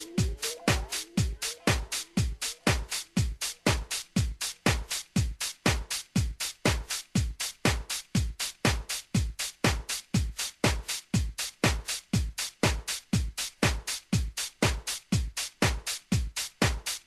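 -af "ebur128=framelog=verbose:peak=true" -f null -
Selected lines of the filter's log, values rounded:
Integrated loudness:
  I:         -29.9 LUFS
  Threshold: -39.9 LUFS
Loudness range:
  LRA:         0.2 LU
  Threshold: -49.9 LUFS
  LRA low:   -30.0 LUFS
  LRA high:  -29.9 LUFS
True peak:
  Peak:       -9.3 dBFS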